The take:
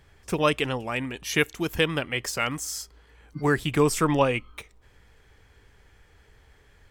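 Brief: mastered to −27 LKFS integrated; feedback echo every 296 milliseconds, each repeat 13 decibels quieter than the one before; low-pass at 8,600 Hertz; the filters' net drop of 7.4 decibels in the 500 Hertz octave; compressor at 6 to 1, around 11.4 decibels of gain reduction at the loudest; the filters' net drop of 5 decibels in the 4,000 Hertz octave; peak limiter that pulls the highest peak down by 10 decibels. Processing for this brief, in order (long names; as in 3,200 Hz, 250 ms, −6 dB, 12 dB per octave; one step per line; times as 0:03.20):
low-pass filter 8,600 Hz
parametric band 500 Hz −8.5 dB
parametric band 4,000 Hz −7.5 dB
downward compressor 6 to 1, threshold −32 dBFS
brickwall limiter −28.5 dBFS
repeating echo 296 ms, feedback 22%, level −13 dB
level +12.5 dB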